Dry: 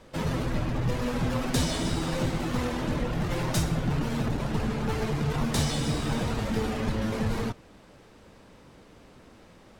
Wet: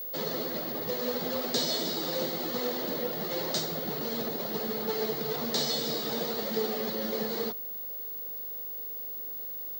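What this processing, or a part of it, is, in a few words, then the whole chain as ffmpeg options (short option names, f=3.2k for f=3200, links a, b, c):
old television with a line whistle: -filter_complex "[0:a]asettb=1/sr,asplit=3[a][b][c];[a]atrim=end=4.774[d];[b]atrim=start=4.77:end=5.57,asetpts=PTS-STARTPTS,afade=t=in:d=0.004:c=qsin,afade=t=out:st=0.796:d=0.004:c=qsin,lowpass=f=9.3k:w=0.5412,lowpass=f=9.3k:w=1.3066[e];[c]atrim=start=5.566[f];[d][e]acrossfade=d=0.004:c1=hsin:c2=qsin[g];[g][f]acrossfade=d=0.004:c1=qsin:c2=hsin,highpass=f=230:w=0.5412,highpass=f=230:w=1.3066,equalizer=f=280:t=q:w=4:g=-10,equalizer=f=460:t=q:w=4:g=4,equalizer=f=1k:t=q:w=4:g=-8,equalizer=f=1.5k:t=q:w=4:g=-6,equalizer=f=2.5k:t=q:w=4:g=-10,equalizer=f=4.3k:t=q:w=4:g=10,lowpass=f=7.1k:w=0.5412,lowpass=f=7.1k:w=1.3066,aeval=exprs='val(0)+0.0178*sin(2*PI*15625*n/s)':c=same"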